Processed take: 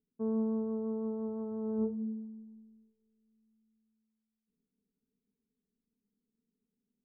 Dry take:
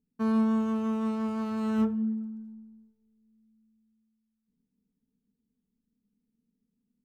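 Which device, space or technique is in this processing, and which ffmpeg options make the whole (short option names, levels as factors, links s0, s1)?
under water: -af "lowpass=f=870:w=0.5412,lowpass=f=870:w=1.3066,equalizer=f=410:t=o:w=0.52:g=11,volume=0.376"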